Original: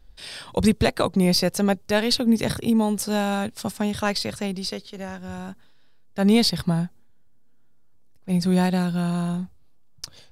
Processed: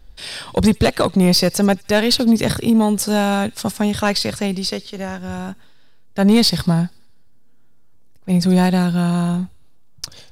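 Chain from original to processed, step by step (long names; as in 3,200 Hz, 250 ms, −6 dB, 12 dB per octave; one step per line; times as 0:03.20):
soft clipping −13 dBFS, distortion −18 dB
delay with a high-pass on its return 81 ms, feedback 54%, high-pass 2,500 Hz, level −20 dB
level +7 dB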